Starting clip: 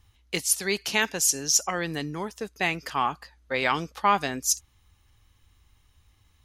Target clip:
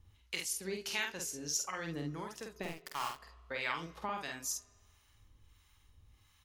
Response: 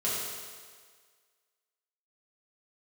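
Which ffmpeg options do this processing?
-filter_complex "[0:a]bandreject=frequency=740:width=12,acompressor=threshold=-39dB:ratio=2,asettb=1/sr,asplit=3[link_01][link_02][link_03];[link_01]atrim=end=2.634[link_04];[link_02]atrim=start=2.63:end=3.15,asetpts=PTS-STARTPTS,afade=type=in:duration=0.004:curve=qsin,afade=type=out:start_time=0.516:duration=0.004:curve=qsin,aeval=exprs='val(0)*gte(abs(val(0)),0.02)':channel_layout=same[link_05];[link_03]atrim=start=3.146[link_06];[link_04][link_05]acrossfade=duration=0.004:curve1=hsin:curve2=qsin[link_07];[link_07][link_06]acrossfade=duration=0.004:curve1=qsin:curve2=hsin,acrossover=split=740[link_08][link_09];[link_08]aeval=exprs='val(0)*(1-0.7/2+0.7/2*cos(2*PI*1.5*n/s))':channel_layout=same[link_10];[link_09]aeval=exprs='val(0)*(1-0.7/2-0.7/2*cos(2*PI*1.5*n/s))':channel_layout=same[link_11];[link_10][link_11]amix=inputs=2:normalize=0,aecho=1:1:48|70:0.668|0.188,asplit=2[link_12][link_13];[1:a]atrim=start_sample=2205,lowpass=4600,adelay=118[link_14];[link_13][link_14]afir=irnorm=-1:irlink=0,volume=-30dB[link_15];[link_12][link_15]amix=inputs=2:normalize=0,volume=-1.5dB"

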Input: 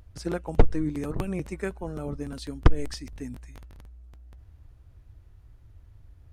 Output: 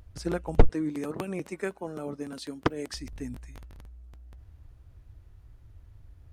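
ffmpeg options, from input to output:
ffmpeg -i in.wav -filter_complex "[0:a]asettb=1/sr,asplit=3[link_01][link_02][link_03];[link_01]atrim=end=0.694[link_04];[link_02]atrim=start=0.69:end=2.94,asetpts=PTS-STARTPTS,afade=type=in:duration=0.004:curve=qsin,afade=type=out:start_time=2.246:duration=0.004:curve=qsin,highpass=220[link_05];[link_03]atrim=start=2.936[link_06];[link_04][link_05]acrossfade=duration=0.004:curve1=hsin:curve2=qsin[link_07];[link_07][link_06]acrossfade=duration=0.004:curve1=qsin:curve2=hsin" out.wav

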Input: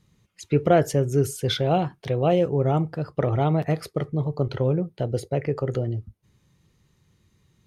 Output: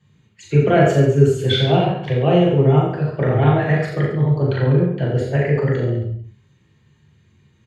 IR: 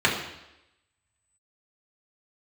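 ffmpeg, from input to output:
-filter_complex "[0:a]asettb=1/sr,asplit=3[link_01][link_02][link_03];[link_01]atrim=end=3.424[link_04];[link_02]atrim=start=3.42:end=5.72,asetpts=PTS-STARTPTS,afade=type=in:duration=0.004:curve=qsin,afade=type=out:start_time=2.296:duration=0.004:curve=qsin,equalizer=frequency=1700:width=4.8:gain=12[link_05];[link_03]atrim=start=5.716[link_06];[link_04][link_05]acrossfade=duration=0.004:curve1=hsin:curve2=qsin[link_07];[link_07][link_06]acrossfade=duration=0.004:curve1=qsin:curve2=hsin,aecho=1:1:40|86|138.9|199.7|269.7:0.631|0.398|0.251|0.158|0.1[link_08];[1:a]atrim=start_sample=2205,atrim=end_sample=4410[link_09];[link_08][link_09]afir=irnorm=-1:irlink=0,volume=-12dB"

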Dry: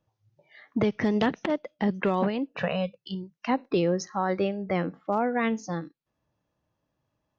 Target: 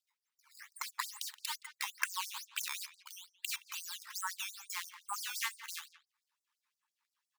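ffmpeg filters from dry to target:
ffmpeg -i in.wav -filter_complex "[0:a]adynamicsmooth=sensitivity=5.5:basefreq=5100,acrusher=samples=10:mix=1:aa=0.000001:lfo=1:lforange=10:lforate=2.3,asplit=2[link_01][link_02];[link_02]adelay=170,highpass=300,lowpass=3400,asoftclip=type=hard:threshold=-24dB,volume=-16dB[link_03];[link_01][link_03]amix=inputs=2:normalize=0,acompressor=threshold=-28dB:ratio=6,afftfilt=real='re*gte(b*sr/1024,810*pow(4700/810,0.5+0.5*sin(2*PI*5.8*pts/sr)))':imag='im*gte(b*sr/1024,810*pow(4700/810,0.5+0.5*sin(2*PI*5.8*pts/sr)))':win_size=1024:overlap=0.75,volume=3dB" out.wav

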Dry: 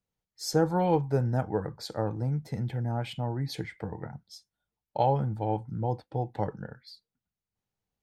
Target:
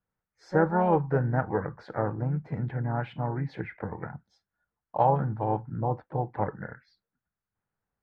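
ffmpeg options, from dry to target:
ffmpeg -i in.wav -filter_complex "[0:a]lowpass=frequency=1500:width_type=q:width=2.5,asplit=2[link_01][link_02];[link_02]asetrate=52444,aresample=44100,atempo=0.840896,volume=-10dB[link_03];[link_01][link_03]amix=inputs=2:normalize=0" out.wav

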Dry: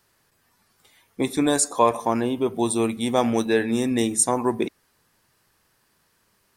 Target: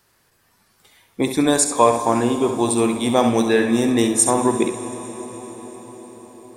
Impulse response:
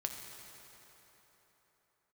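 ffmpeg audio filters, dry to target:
-filter_complex "[0:a]asplit=2[link_01][link_02];[1:a]atrim=start_sample=2205,asetrate=24255,aresample=44100,adelay=67[link_03];[link_02][link_03]afir=irnorm=-1:irlink=0,volume=-10.5dB[link_04];[link_01][link_04]amix=inputs=2:normalize=0,volume=3.5dB"

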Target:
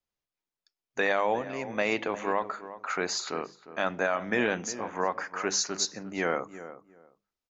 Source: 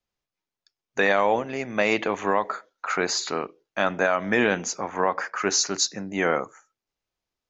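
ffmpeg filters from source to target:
ffmpeg -i in.wav -filter_complex "[0:a]bandreject=frequency=50:width_type=h:width=6,bandreject=frequency=100:width_type=h:width=6,bandreject=frequency=150:width_type=h:width=6,bandreject=frequency=200:width_type=h:width=6,asplit=2[link_01][link_02];[link_02]adelay=355,lowpass=frequency=1300:poles=1,volume=-13dB,asplit=2[link_03][link_04];[link_04]adelay=355,lowpass=frequency=1300:poles=1,volume=0.21[link_05];[link_01][link_03][link_05]amix=inputs=3:normalize=0,volume=-5.5dB" out.wav

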